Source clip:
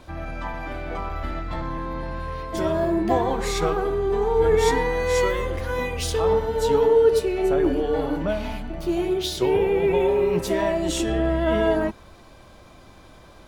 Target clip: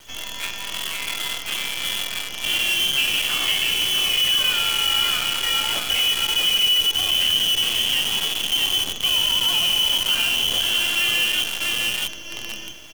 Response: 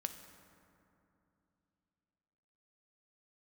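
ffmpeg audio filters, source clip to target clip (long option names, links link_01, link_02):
-filter_complex "[0:a]acrossover=split=120|1600[link_01][link_02][link_03];[link_01]alimiter=level_in=7dB:limit=-24dB:level=0:latency=1:release=20,volume=-7dB[link_04];[link_03]aemphasis=mode=production:type=75fm[link_05];[link_04][link_02][link_05]amix=inputs=3:normalize=0,lowpass=frequency=2800:width_type=q:width=0.5098,lowpass=frequency=2800:width_type=q:width=0.6013,lowpass=frequency=2800:width_type=q:width=0.9,lowpass=frequency=2800:width_type=q:width=2.563,afreqshift=-3300,aecho=1:1:672|1344|2016|2688|3360:0.531|0.234|0.103|0.0452|0.0199,acompressor=threshold=-23dB:ratio=2,acrusher=bits=5:dc=4:mix=0:aa=0.000001,asetrate=45938,aresample=44100,volume=2.5dB"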